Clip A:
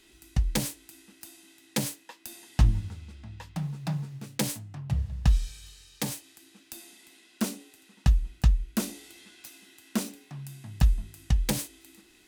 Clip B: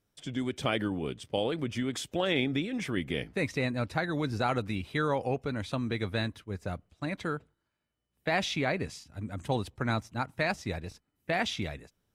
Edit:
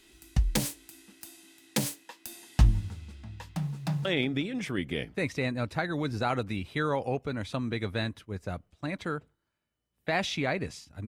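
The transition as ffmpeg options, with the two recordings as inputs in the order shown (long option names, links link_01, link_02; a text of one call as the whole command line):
ffmpeg -i cue0.wav -i cue1.wav -filter_complex "[0:a]apad=whole_dur=11.07,atrim=end=11.07,atrim=end=4.052[link_01];[1:a]atrim=start=2.238:end=9.26[link_02];[link_01][link_02]acrossfade=duration=0.004:curve1=hsin:curve2=hsin,asplit=2[link_03][link_04];[link_04]afade=type=in:start_time=3.77:duration=0.01,afade=type=out:start_time=4.05:duration=0.01,aecho=0:1:180|360|540|720|900|1080:0.177828|0.106697|0.0640181|0.0384108|0.0230465|0.0138279[link_05];[link_03][link_05]amix=inputs=2:normalize=0" out.wav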